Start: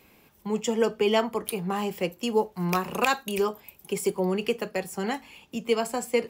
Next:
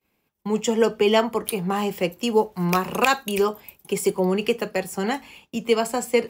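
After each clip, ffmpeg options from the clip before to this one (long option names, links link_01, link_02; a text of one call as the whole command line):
ffmpeg -i in.wav -af "agate=range=-33dB:threshold=-45dB:ratio=3:detection=peak,volume=4.5dB" out.wav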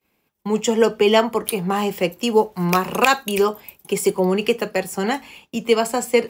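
ffmpeg -i in.wav -af "lowshelf=frequency=140:gain=-3.5,volume=3.5dB" out.wav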